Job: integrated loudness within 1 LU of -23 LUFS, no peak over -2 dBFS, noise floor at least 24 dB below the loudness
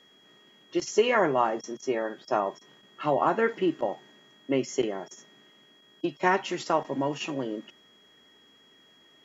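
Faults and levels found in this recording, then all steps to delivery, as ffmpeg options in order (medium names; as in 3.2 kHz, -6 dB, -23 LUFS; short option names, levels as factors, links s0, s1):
steady tone 3.3 kHz; tone level -58 dBFS; loudness -28.0 LUFS; peak level -10.5 dBFS; loudness target -23.0 LUFS
-> -af "bandreject=f=3300:w=30"
-af "volume=1.78"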